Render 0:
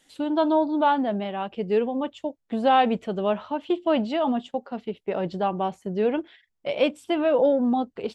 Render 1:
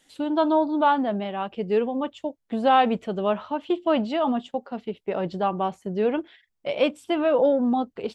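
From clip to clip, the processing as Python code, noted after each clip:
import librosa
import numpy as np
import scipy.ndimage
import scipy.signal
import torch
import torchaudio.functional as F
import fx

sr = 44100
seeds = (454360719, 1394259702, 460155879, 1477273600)

y = fx.dynamic_eq(x, sr, hz=1200.0, q=3.2, threshold_db=-39.0, ratio=4.0, max_db=4)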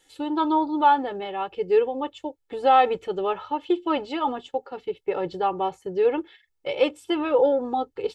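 y = x + 0.89 * np.pad(x, (int(2.3 * sr / 1000.0), 0))[:len(x)]
y = F.gain(torch.from_numpy(y), -2.0).numpy()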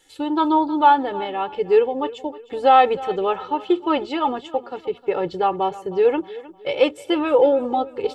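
y = fx.echo_feedback(x, sr, ms=310, feedback_pct=38, wet_db=-18)
y = F.gain(torch.from_numpy(y), 4.0).numpy()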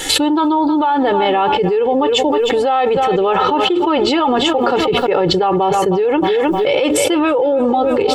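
y = fx.env_flatten(x, sr, amount_pct=100)
y = F.gain(torch.from_numpy(y), -4.5).numpy()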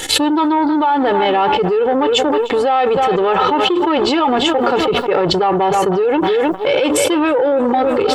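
y = fx.transformer_sat(x, sr, knee_hz=830.0)
y = F.gain(torch.from_numpy(y), 1.0).numpy()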